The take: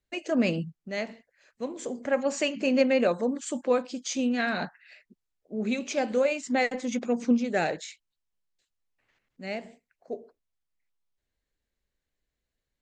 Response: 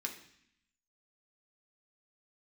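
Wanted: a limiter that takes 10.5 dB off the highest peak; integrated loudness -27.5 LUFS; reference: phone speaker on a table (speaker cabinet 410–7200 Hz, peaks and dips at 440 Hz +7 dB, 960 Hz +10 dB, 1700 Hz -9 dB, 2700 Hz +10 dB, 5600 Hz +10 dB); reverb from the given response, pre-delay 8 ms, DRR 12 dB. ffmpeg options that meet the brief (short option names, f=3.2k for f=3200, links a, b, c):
-filter_complex "[0:a]alimiter=limit=-21.5dB:level=0:latency=1,asplit=2[a][b];[1:a]atrim=start_sample=2205,adelay=8[c];[b][c]afir=irnorm=-1:irlink=0,volume=-12.5dB[d];[a][d]amix=inputs=2:normalize=0,highpass=f=410:w=0.5412,highpass=f=410:w=1.3066,equalizer=f=440:t=q:w=4:g=7,equalizer=f=960:t=q:w=4:g=10,equalizer=f=1.7k:t=q:w=4:g=-9,equalizer=f=2.7k:t=q:w=4:g=10,equalizer=f=5.6k:t=q:w=4:g=10,lowpass=f=7.2k:w=0.5412,lowpass=f=7.2k:w=1.3066,volume=3.5dB"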